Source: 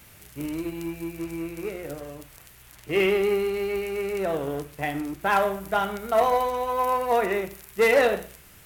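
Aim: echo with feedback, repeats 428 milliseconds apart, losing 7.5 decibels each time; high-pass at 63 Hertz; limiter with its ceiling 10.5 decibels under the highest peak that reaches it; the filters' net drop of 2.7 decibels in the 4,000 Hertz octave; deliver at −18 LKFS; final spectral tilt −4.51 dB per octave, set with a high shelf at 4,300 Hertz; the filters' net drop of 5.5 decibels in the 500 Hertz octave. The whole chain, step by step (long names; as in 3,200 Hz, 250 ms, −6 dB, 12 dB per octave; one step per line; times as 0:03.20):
high-pass filter 63 Hz
parametric band 500 Hz −7 dB
parametric band 4,000 Hz −6 dB
high-shelf EQ 4,300 Hz +4 dB
brickwall limiter −21 dBFS
repeating echo 428 ms, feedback 42%, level −7.5 dB
level +13.5 dB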